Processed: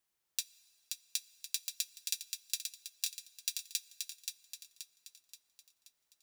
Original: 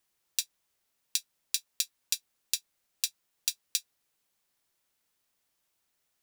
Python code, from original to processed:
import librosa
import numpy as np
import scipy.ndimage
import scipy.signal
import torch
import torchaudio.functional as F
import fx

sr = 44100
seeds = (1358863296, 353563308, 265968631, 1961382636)

y = fx.echo_thinned(x, sr, ms=528, feedback_pct=46, hz=420.0, wet_db=-5.0)
y = fx.rev_plate(y, sr, seeds[0], rt60_s=3.8, hf_ratio=0.5, predelay_ms=0, drr_db=18.5)
y = y * librosa.db_to_amplitude(-6.0)